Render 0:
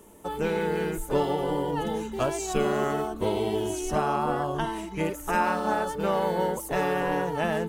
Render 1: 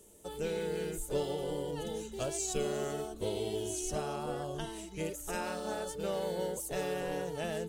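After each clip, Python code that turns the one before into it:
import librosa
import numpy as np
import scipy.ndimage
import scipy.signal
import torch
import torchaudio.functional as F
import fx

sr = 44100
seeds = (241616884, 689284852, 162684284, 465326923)

y = fx.graphic_eq(x, sr, hz=(250, 500, 1000, 2000, 4000, 8000), db=(-6, 3, -11, -4, 4, 7))
y = F.gain(torch.from_numpy(y), -6.5).numpy()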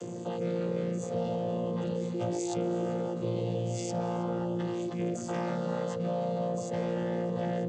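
y = fx.chord_vocoder(x, sr, chord='bare fifth', root=46)
y = y + 10.0 ** (-16.5 / 20.0) * np.pad(y, (int(319 * sr / 1000.0), 0))[:len(y)]
y = fx.env_flatten(y, sr, amount_pct=70)
y = F.gain(torch.from_numpy(y), 1.5).numpy()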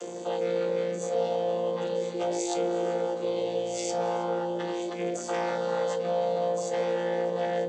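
y = scipy.signal.sosfilt(scipy.signal.butter(2, 500.0, 'highpass', fs=sr, output='sos'), x)
y = fx.room_shoebox(y, sr, seeds[0], volume_m3=150.0, walls='furnished', distance_m=0.83)
y = F.gain(torch.from_numpy(y), 5.5).numpy()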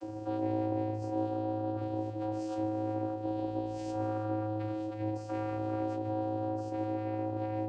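y = fx.rider(x, sr, range_db=10, speed_s=2.0)
y = fx.vocoder(y, sr, bands=8, carrier='square', carrier_hz=107.0)
y = y + 10.0 ** (-16.5 / 20.0) * np.pad(y, (int(148 * sr / 1000.0), 0))[:len(y)]
y = F.gain(torch.from_numpy(y), -5.0).numpy()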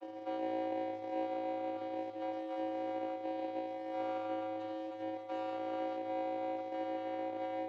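y = scipy.ndimage.median_filter(x, 25, mode='constant')
y = fx.bandpass_edges(y, sr, low_hz=510.0, high_hz=4400.0)
y = F.gain(torch.from_numpy(y), 1.0).numpy()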